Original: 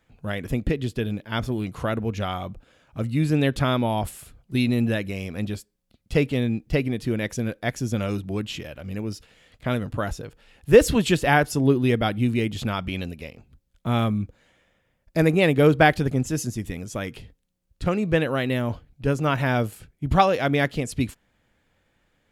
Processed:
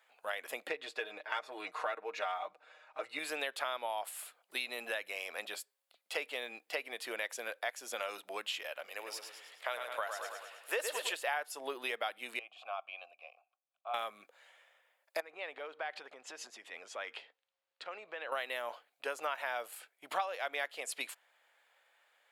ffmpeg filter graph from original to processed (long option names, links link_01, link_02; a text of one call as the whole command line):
ffmpeg -i in.wav -filter_complex "[0:a]asettb=1/sr,asplit=3[link_01][link_02][link_03];[link_01]atrim=end=0.694[link_04];[link_02]atrim=start=0.69:end=3.19,asetpts=PTS-STARTPTS,afade=type=in:duration=0.004:curve=qsin,afade=type=out:start_time=2.496:duration=0.004:curve=qsin,aecho=1:1:6.5:0.8,atrim=end_sample=110250,adynamicsmooth=sensitivity=1.5:basefreq=5400,bandreject=frequency=3100:width=7.3[link_05];[link_03]atrim=start=3.186[link_06];[link_04][link_05]acrossfade=duration=0.004:curve1=hsin:curve2=qsin[link_07];[link_07][link_06]acrossfade=duration=0.004:curve1=qsin:curve2=hsin,asettb=1/sr,asplit=3[link_08][link_09][link_10];[link_08]atrim=end=8.864[link_11];[link_09]atrim=start=8.86:end=11.13,asetpts=PTS-STARTPTS,afade=type=in:duration=0.004:curve=qsin,afade=type=out:start_time=2.266:duration=0.004:curve=qsin,bass=frequency=250:gain=-14,treble=frequency=4000:gain=1,aecho=1:1:106|212|318|424|530|636:0.447|0.237|0.125|0.0665|0.0352|0.0187,atrim=end_sample=100107[link_12];[link_10]atrim=start=11.126[link_13];[link_11][link_12]acrossfade=duration=0.004:curve1=hsin:curve2=qsin[link_14];[link_14][link_13]acrossfade=duration=0.004:curve1=qsin:curve2=hsin,asettb=1/sr,asplit=3[link_15][link_16][link_17];[link_15]atrim=end=12.394[link_18];[link_16]atrim=start=12.39:end=13.94,asetpts=PTS-STARTPTS,afade=type=in:duration=0.004:curve=qsin,afade=type=out:start_time=1.546:duration=0.004:curve=qsin,asplit=3[link_19][link_20][link_21];[link_19]bandpass=frequency=730:width_type=q:width=8,volume=0dB[link_22];[link_20]bandpass=frequency=1090:width_type=q:width=8,volume=-6dB[link_23];[link_21]bandpass=frequency=2440:width_type=q:width=8,volume=-9dB[link_24];[link_22][link_23][link_24]amix=inputs=3:normalize=0,equalizer=frequency=430:width_type=o:width=0.22:gain=-8.5[link_25];[link_17]atrim=start=13.936[link_26];[link_18][link_25]acrossfade=duration=0.004:curve1=hsin:curve2=qsin[link_27];[link_27][link_26]acrossfade=duration=0.004:curve1=qsin:curve2=hsin,asettb=1/sr,asplit=3[link_28][link_29][link_30];[link_28]atrim=end=15.204[link_31];[link_29]atrim=start=15.2:end=18.32,asetpts=PTS-STARTPTS,afade=type=in:duration=0.004:curve=qsin,afade=type=out:start_time=3.116:duration=0.004:curve=qsin,lowpass=4100,acompressor=threshold=-30dB:ratio=16:attack=3.2:release=140:knee=1:detection=peak[link_32];[link_30]atrim=start=18.316[link_33];[link_31][link_32]acrossfade=duration=0.004:curve1=hsin:curve2=qsin[link_34];[link_34][link_33]acrossfade=duration=0.004:curve1=qsin:curve2=hsin,highpass=frequency=630:width=0.5412,highpass=frequency=630:width=1.3066,equalizer=frequency=5900:width_type=o:width=0.5:gain=-5.5,acompressor=threshold=-36dB:ratio=4,volume=1dB" out.wav